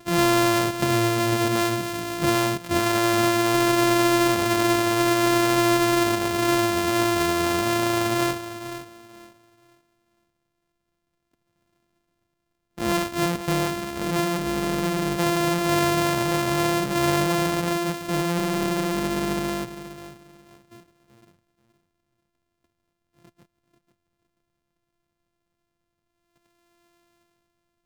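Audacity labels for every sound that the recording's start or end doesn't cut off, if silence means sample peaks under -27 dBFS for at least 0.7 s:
12.790000	19.650000	sound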